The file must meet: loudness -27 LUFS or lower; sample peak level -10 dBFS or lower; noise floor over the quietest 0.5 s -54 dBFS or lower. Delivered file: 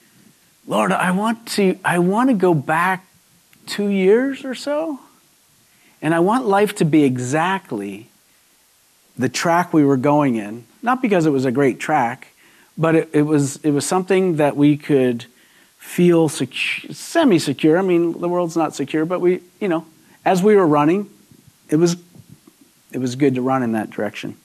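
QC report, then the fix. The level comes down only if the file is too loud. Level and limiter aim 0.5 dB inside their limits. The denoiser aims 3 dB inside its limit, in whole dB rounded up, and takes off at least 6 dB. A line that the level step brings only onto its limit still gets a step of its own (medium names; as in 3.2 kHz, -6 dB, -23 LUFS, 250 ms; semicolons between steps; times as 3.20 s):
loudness -18.0 LUFS: fail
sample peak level -5.0 dBFS: fail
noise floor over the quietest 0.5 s -56 dBFS: pass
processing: trim -9.5 dB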